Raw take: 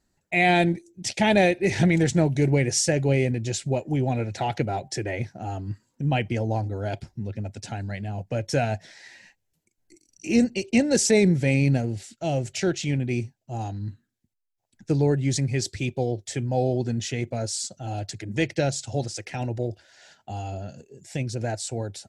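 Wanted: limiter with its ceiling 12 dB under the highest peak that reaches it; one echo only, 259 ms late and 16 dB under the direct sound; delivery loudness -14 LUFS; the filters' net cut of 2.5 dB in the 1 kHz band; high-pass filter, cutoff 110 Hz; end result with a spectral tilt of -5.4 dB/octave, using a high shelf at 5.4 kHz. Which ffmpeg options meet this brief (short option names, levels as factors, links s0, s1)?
-af "highpass=110,equalizer=f=1000:t=o:g=-4,highshelf=f=5400:g=-6.5,alimiter=limit=0.1:level=0:latency=1,aecho=1:1:259:0.158,volume=7.08"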